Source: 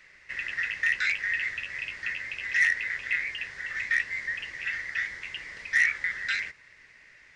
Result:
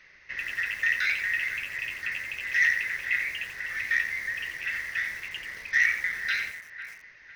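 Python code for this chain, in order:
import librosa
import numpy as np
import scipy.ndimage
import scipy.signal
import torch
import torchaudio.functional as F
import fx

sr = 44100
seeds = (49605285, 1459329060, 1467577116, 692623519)

y = fx.brickwall_lowpass(x, sr, high_hz=6600.0)
y = fx.echo_wet_bandpass(y, sr, ms=498, feedback_pct=32, hz=1200.0, wet_db=-12.0)
y = fx.echo_crushed(y, sr, ms=87, feedback_pct=35, bits=7, wet_db=-8)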